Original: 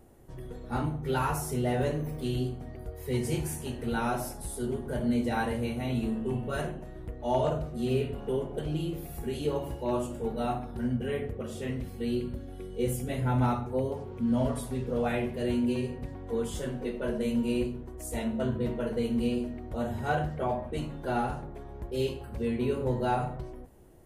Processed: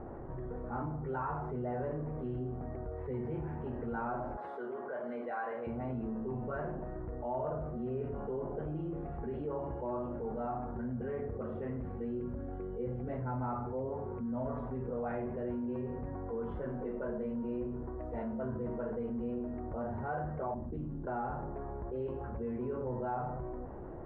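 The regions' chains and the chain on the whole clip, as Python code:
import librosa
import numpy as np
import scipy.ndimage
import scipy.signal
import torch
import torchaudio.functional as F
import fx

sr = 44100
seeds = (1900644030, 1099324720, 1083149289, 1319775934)

y = fx.chain(x, sr, fx.highpass(hz=600.0, slope=12),
    fx.high_shelf(hz=3800.0, db=6.5),
    fx.notch(hz=900.0, q=10.0), at=(4.37, 5.67))
y = fx.chain(y, sr, fx.lowpass(hz=3900.0, slope=12),
    fx.band_shelf(hz=1100.0, db=-16.0, octaves=2.7),
    fx.doppler_dist(depth_ms=0.2), at=(20.54, 21.07))
y = scipy.signal.sosfilt(scipy.signal.butter(4, 1400.0, 'lowpass', fs=sr, output='sos'), y)
y = fx.low_shelf(y, sr, hz=470.0, db=-7.0)
y = fx.env_flatten(y, sr, amount_pct=70)
y = y * librosa.db_to_amplitude(-8.0)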